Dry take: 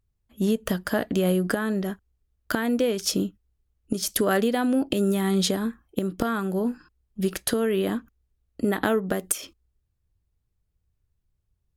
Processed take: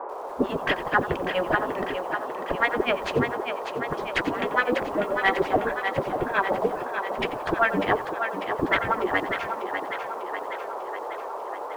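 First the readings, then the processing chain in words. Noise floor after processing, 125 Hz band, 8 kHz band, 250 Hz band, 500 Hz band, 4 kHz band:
-35 dBFS, -6.0 dB, under -15 dB, -6.5 dB, +0.5 dB, -2.0 dB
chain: spectral gate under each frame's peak -10 dB weak; in parallel at -9.5 dB: sine folder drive 17 dB, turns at -11 dBFS; on the sum: tremolo 7.2 Hz, depth 92%; LFO low-pass sine 4.6 Hz 300–2500 Hz; bit crusher 10-bit; band noise 380–1100 Hz -36 dBFS; on a send: thinning echo 596 ms, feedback 62%, high-pass 290 Hz, level -6.5 dB; on the sum: bit-crushed delay 89 ms, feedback 35%, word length 7-bit, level -14.5 dB; trim +1 dB

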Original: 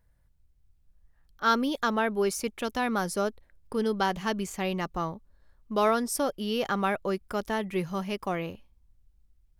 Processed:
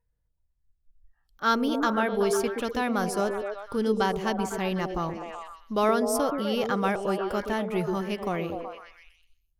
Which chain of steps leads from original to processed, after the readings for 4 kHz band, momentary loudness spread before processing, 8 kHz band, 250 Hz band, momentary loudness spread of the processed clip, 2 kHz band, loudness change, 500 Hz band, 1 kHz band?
0.0 dB, 8 LU, 0.0 dB, +2.5 dB, 9 LU, +0.5 dB, +2.0 dB, +3.0 dB, +1.5 dB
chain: spectral noise reduction 14 dB; bass shelf 150 Hz +4.5 dB; on a send: repeats whose band climbs or falls 125 ms, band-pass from 350 Hz, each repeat 0.7 oct, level -1 dB

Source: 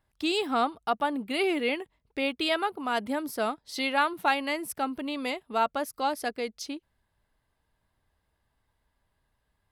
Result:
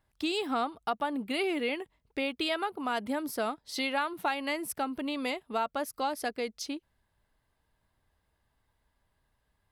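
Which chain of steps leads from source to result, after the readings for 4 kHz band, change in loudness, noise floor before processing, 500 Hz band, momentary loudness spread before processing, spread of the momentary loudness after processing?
-3.0 dB, -3.5 dB, -77 dBFS, -3.0 dB, 8 LU, 5 LU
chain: compression 3:1, threshold -28 dBFS, peak gain reduction 7 dB

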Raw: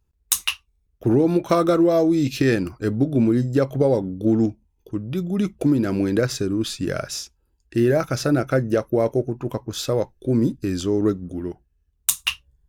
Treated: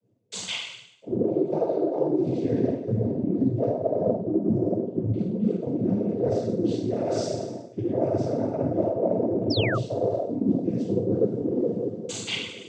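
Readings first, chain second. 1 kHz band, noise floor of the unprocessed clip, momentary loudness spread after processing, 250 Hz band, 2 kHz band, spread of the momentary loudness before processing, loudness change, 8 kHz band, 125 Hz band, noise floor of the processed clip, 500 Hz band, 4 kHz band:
-5.0 dB, -68 dBFS, 6 LU, -4.5 dB, -7.0 dB, 10 LU, -4.5 dB, -12.5 dB, -4.5 dB, -47 dBFS, -2.5 dB, -4.5 dB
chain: flange 0.91 Hz, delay 4.8 ms, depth 9.1 ms, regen -59%; resonant low shelf 750 Hz +12.5 dB, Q 3; two-slope reverb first 0.72 s, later 3.1 s, from -18 dB, DRR -9.5 dB; reverse; compression 12:1, threshold -14 dBFS, peak gain reduction 25 dB; reverse; distance through air 70 m; on a send: flutter echo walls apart 8.3 m, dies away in 0.46 s; on the sum: noise-vocoded speech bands 16; painted sound fall, 9.50–9.78 s, 1.1–5.7 kHz -22 dBFS; trim -8 dB

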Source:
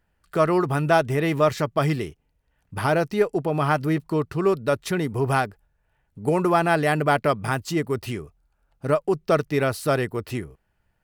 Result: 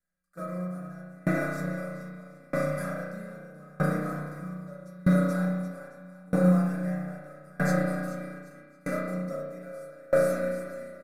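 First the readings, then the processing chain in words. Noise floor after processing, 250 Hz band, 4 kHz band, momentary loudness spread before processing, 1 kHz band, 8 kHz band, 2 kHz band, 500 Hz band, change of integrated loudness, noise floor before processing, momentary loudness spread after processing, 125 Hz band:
-54 dBFS, -3.0 dB, under -15 dB, 10 LU, -13.5 dB, no reading, -8.0 dB, -8.0 dB, -6.0 dB, -71 dBFS, 19 LU, -4.0 dB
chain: CVSD coder 64 kbps; in parallel at +2 dB: level held to a coarse grid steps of 15 dB; on the sum: treble shelf 8.8 kHz +9 dB; on a send: bouncing-ball echo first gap 430 ms, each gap 0.8×, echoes 5; on the sum: compression, threshold -19 dBFS, peak gain reduction 8.5 dB; static phaser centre 600 Hz, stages 8; spring tank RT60 2.4 s, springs 33 ms, chirp 30 ms, DRR -7.5 dB; gate -26 dBFS, range -14 dB; feedback comb 180 Hz, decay 0.24 s, harmonics odd, mix 90%; short-mantissa float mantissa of 6-bit; comb 6.8 ms, depth 32%; sawtooth tremolo in dB decaying 0.79 Hz, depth 29 dB; trim +6.5 dB

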